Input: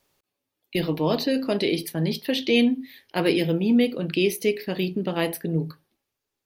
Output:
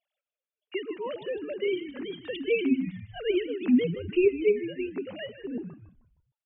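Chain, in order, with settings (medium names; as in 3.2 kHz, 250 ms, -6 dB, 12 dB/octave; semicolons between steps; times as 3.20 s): formants replaced by sine waves; peaking EQ 790 Hz -8 dB 2.8 oct; on a send: frequency-shifting echo 155 ms, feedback 40%, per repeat -79 Hz, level -12.5 dB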